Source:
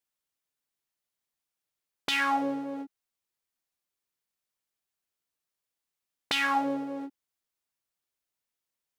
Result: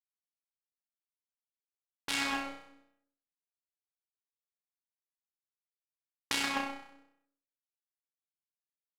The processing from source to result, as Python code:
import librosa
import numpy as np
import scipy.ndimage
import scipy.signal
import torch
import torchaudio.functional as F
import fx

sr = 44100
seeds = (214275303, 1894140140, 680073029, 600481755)

y = fx.power_curve(x, sr, exponent=3.0)
y = fx.room_flutter(y, sr, wall_m=5.5, rt60_s=0.7)
y = fx.doppler_dist(y, sr, depth_ms=0.21)
y = y * librosa.db_to_amplitude(4.0)